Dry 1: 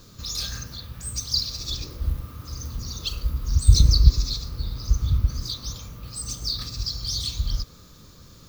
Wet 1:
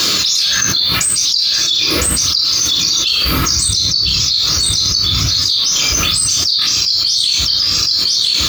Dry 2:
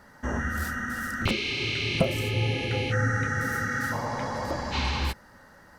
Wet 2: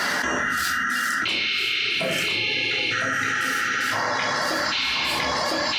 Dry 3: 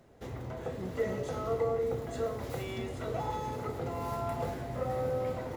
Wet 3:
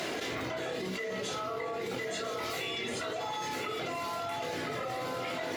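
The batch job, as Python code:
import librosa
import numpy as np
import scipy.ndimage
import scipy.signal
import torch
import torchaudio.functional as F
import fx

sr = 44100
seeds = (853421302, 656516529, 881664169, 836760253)

y = fx.weighting(x, sr, curve='D')
y = fx.dereverb_blind(y, sr, rt60_s=1.7)
y = scipy.signal.sosfilt(scipy.signal.butter(2, 73.0, 'highpass', fs=sr, output='sos'), y)
y = fx.low_shelf(y, sr, hz=280.0, db=-9.5)
y = fx.rider(y, sr, range_db=4, speed_s=2.0)
y = y + 10.0 ** (-8.0 / 20.0) * np.pad(y, (int(1007 * sr / 1000.0), 0))[:len(y)]
y = fx.room_shoebox(y, sr, seeds[0], volume_m3=550.0, walls='furnished', distance_m=3.1)
y = fx.env_flatten(y, sr, amount_pct=100)
y = y * librosa.db_to_amplitude(-8.5)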